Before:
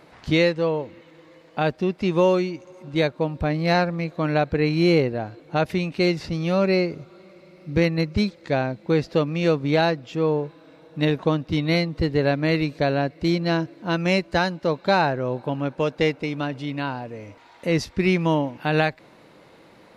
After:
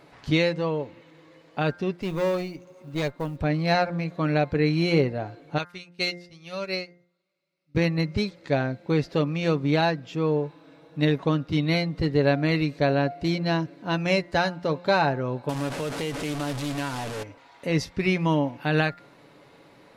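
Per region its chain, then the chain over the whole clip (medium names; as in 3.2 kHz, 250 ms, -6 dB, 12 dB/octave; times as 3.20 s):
1.97–3.39 s: valve stage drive 18 dB, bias 0.6 + short-mantissa float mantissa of 4-bit
5.58–7.75 s: tilt shelf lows -7 dB, about 1.5 kHz + upward expansion 2.5:1, over -38 dBFS
15.49–17.23 s: one-bit delta coder 64 kbps, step -24.5 dBFS + compression 4:1, threshold -23 dBFS + loudspeaker Doppler distortion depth 0.16 ms
whole clip: comb 7.1 ms, depth 36%; de-hum 175.6 Hz, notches 12; trim -2.5 dB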